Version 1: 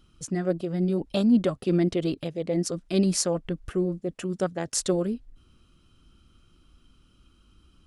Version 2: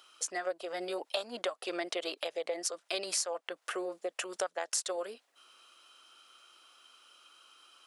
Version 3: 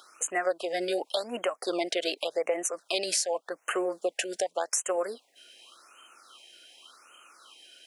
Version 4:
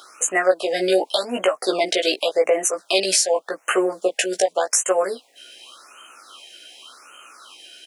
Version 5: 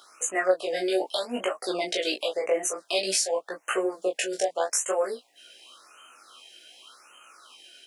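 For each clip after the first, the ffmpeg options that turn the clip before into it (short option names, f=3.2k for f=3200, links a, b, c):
-af "highpass=f=600:w=0.5412,highpass=f=600:w=1.3066,acompressor=threshold=-42dB:ratio=4,volume=9dB"
-filter_complex "[0:a]asplit=2[a][b];[b]alimiter=level_in=0.5dB:limit=-24dB:level=0:latency=1:release=117,volume=-0.5dB,volume=3dB[c];[a][c]amix=inputs=2:normalize=0,afftfilt=real='re*(1-between(b*sr/1024,990*pow(4500/990,0.5+0.5*sin(2*PI*0.87*pts/sr))/1.41,990*pow(4500/990,0.5+0.5*sin(2*PI*0.87*pts/sr))*1.41))':imag='im*(1-between(b*sr/1024,990*pow(4500/990,0.5+0.5*sin(2*PI*0.87*pts/sr))/1.41,990*pow(4500/990,0.5+0.5*sin(2*PI*0.87*pts/sr))*1.41))':win_size=1024:overlap=0.75"
-filter_complex "[0:a]asplit=2[a][b];[b]adelay=16,volume=-3.5dB[c];[a][c]amix=inputs=2:normalize=0,volume=8dB"
-af "flanger=delay=17:depth=7.4:speed=0.56,volume=-4dB"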